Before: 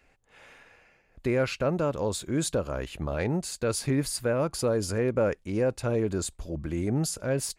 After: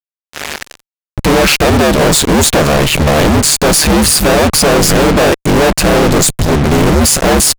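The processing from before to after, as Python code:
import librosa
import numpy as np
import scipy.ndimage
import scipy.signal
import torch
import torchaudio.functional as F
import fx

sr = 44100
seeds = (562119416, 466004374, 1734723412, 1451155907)

y = x * np.sin(2.0 * np.pi * 74.0 * np.arange(len(x)) / sr)
y = fx.fuzz(y, sr, gain_db=56.0, gate_db=-50.0)
y = y * 10.0 ** (6.0 / 20.0)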